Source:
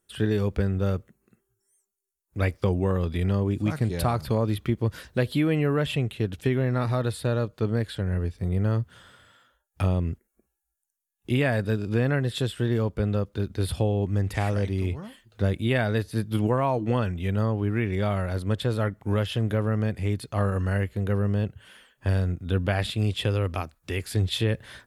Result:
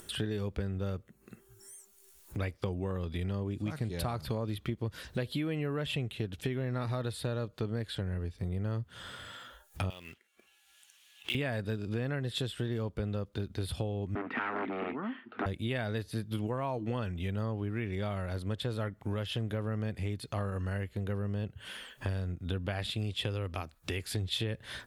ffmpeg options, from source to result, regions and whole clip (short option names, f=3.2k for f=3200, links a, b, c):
-filter_complex "[0:a]asettb=1/sr,asplit=3[a][b][c];[a]atrim=end=9.904[d];[b]atrim=start=9.9:end=11.35,asetpts=PTS-STARTPTS,afade=t=in:d=0.004:c=qsin,afade=t=out:st=1.446:d=0.004:c=qsin,bandpass=f=2.5k:t=q:w=0.79,equalizer=f=3k:t=o:w=0.82:g=10.5,acrusher=bits=3:mode=log:mix=0:aa=0.000001[e];[c]atrim=start=11.346[f];[d][e]acrossfade=d=0.004:c1=hsin:c2=qsin[g];[g][f]acrossfade=d=0.004:c1=qsin:c2=hsin,asettb=1/sr,asplit=3[h][i][j];[h]atrim=end=14.154[k];[i]atrim=start=14.15:end=15.46,asetpts=PTS-STARTPTS,afade=t=in:d=0.004:c=qsin,afade=t=out:st=1.306:d=0.004:c=qsin,acontrast=90,aeval=exprs='0.15*(abs(mod(val(0)/0.15+3,4)-2)-1)':c=same,highpass=f=240:w=0.5412,highpass=f=240:w=1.3066,equalizer=f=250:t=q:w=4:g=10,equalizer=f=540:t=q:w=4:g=-9,equalizer=f=1.3k:t=q:w=4:g=7,lowpass=f=2.3k:w=0.5412,lowpass=f=2.3k:w=1.3066[l];[j]atrim=start=15.456[m];[k][l]acrossfade=d=0.004:c1=hsin:c2=qsin[n];[n][m]acrossfade=d=0.004:c1=qsin:c2=hsin,acompressor=threshold=-34dB:ratio=3,equalizer=f=3.6k:t=o:w=1:g=3.5,acompressor=mode=upward:threshold=-36dB:ratio=2.5"